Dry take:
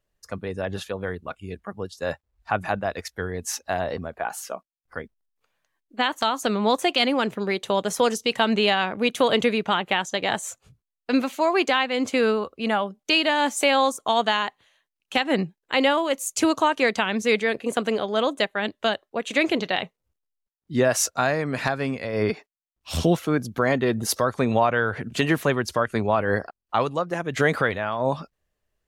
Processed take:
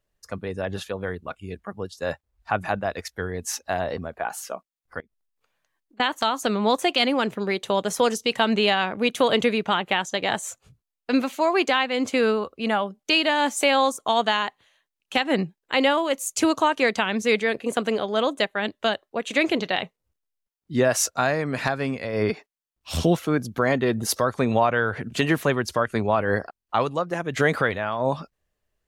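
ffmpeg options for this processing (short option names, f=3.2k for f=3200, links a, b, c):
-filter_complex "[0:a]asettb=1/sr,asplit=3[a][b][c];[a]atrim=end=5.004[d];[b]atrim=start=5:end=6,asetpts=PTS-STARTPTS,afade=t=in:d=0.004:c=qsin,afade=t=out:st=0.996:d=0.004:c=qsin,acompressor=threshold=-54dB:ratio=10:attack=3.2:release=140:knee=1:detection=peak[e];[c]atrim=start=5.996[f];[d][e]acrossfade=d=0.004:c1=hsin:c2=qsin[g];[g][f]acrossfade=d=0.004:c1=qsin:c2=hsin"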